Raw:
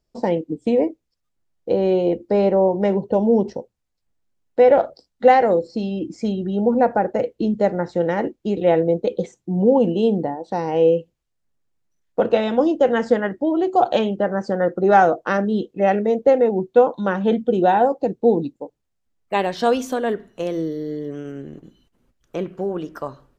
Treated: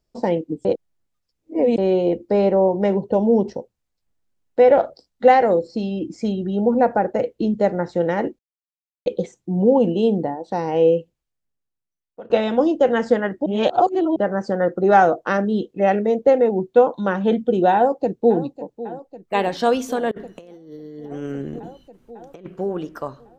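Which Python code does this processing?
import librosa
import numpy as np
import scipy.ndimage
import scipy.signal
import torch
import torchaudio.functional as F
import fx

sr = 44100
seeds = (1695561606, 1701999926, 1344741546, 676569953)

y = fx.echo_throw(x, sr, start_s=17.75, length_s=0.69, ms=550, feedback_pct=75, wet_db=-15.5)
y = fx.over_compress(y, sr, threshold_db=-32.0, ratio=-0.5, at=(20.11, 22.46))
y = fx.edit(y, sr, fx.reverse_span(start_s=0.65, length_s=1.13),
    fx.silence(start_s=8.39, length_s=0.67),
    fx.fade_out_to(start_s=10.98, length_s=1.32, curve='qua', floor_db=-19.5),
    fx.reverse_span(start_s=13.46, length_s=0.7), tone=tone)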